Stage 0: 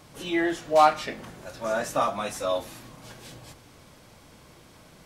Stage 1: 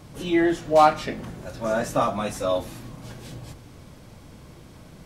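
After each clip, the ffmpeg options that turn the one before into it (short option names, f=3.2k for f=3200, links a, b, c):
-af "lowshelf=f=370:g=10.5"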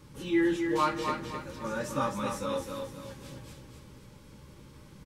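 -filter_complex "[0:a]asuperstop=centerf=690:order=20:qfactor=3.8,asplit=2[a][b];[b]adelay=15,volume=-10.5dB[c];[a][c]amix=inputs=2:normalize=0,aecho=1:1:262|524|786|1048|1310:0.531|0.202|0.0767|0.0291|0.0111,volume=-7dB"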